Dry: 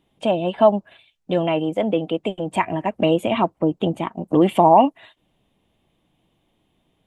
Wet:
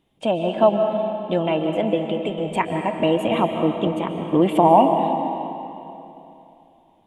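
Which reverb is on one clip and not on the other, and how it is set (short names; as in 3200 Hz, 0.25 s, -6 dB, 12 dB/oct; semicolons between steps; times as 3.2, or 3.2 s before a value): digital reverb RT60 3 s, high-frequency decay 0.85×, pre-delay 0.1 s, DRR 4.5 dB; gain -1.5 dB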